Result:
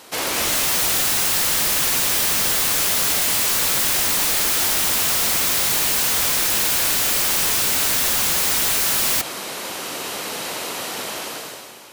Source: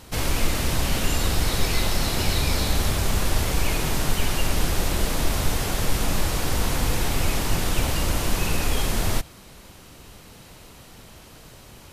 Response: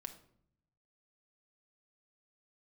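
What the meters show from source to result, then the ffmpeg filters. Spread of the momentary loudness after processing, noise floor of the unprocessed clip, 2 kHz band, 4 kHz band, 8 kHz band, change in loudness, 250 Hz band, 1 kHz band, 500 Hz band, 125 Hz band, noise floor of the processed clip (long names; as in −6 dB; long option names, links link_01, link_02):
11 LU, −47 dBFS, +6.0 dB, +7.5 dB, +11.5 dB, +8.0 dB, −4.5 dB, +3.5 dB, 0.0 dB, −11.5 dB, −33 dBFS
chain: -filter_complex "[0:a]highpass=380,dynaudnorm=framelen=100:gausssize=13:maxgain=16dB,asplit=2[link_01][link_02];[link_02]alimiter=limit=-14.5dB:level=0:latency=1,volume=-2.5dB[link_03];[link_01][link_03]amix=inputs=2:normalize=0,aeval=exprs='(mod(5.31*val(0)+1,2)-1)/5.31':channel_layout=same"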